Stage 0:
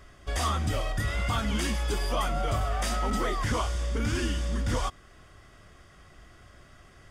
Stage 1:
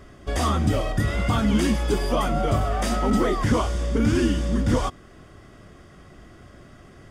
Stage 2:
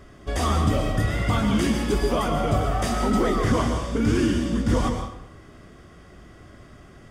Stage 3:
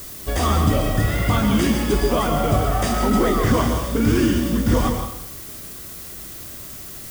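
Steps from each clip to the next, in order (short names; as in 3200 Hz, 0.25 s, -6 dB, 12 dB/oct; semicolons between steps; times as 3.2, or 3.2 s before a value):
bell 250 Hz +10.5 dB 2.7 oct; gain +1.5 dB
reverb RT60 0.75 s, pre-delay 0.112 s, DRR 4.5 dB; gain -1 dB
added noise blue -40 dBFS; gain +3.5 dB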